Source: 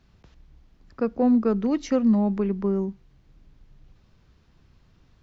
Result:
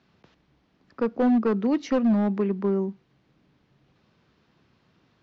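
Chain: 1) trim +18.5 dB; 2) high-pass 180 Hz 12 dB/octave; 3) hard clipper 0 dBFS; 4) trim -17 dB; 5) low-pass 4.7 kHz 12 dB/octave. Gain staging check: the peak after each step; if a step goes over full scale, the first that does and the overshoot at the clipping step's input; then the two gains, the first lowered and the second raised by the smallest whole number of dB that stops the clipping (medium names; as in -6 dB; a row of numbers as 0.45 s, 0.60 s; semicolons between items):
+7.0 dBFS, +6.5 dBFS, 0.0 dBFS, -17.0 dBFS, -17.0 dBFS; step 1, 6.5 dB; step 1 +11.5 dB, step 4 -10 dB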